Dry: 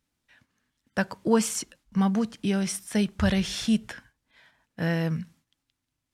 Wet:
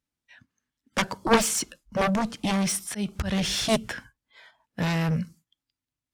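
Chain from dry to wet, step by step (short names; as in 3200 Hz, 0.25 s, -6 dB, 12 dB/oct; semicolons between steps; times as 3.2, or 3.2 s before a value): 2.54–3.58 auto swell 0.219 s; spectral noise reduction 15 dB; added harmonics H 7 -7 dB, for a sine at -9.5 dBFS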